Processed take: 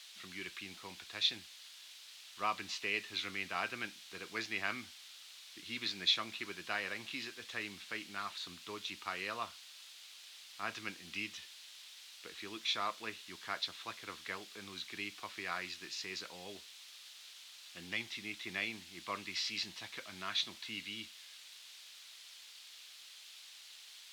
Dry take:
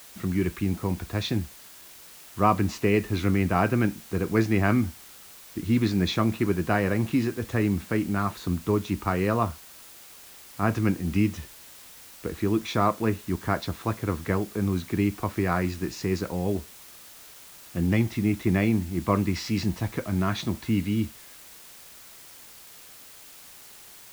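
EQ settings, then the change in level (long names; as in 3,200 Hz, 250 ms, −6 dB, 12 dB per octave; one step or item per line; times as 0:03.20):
resonant band-pass 3,600 Hz, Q 1.9
+2.5 dB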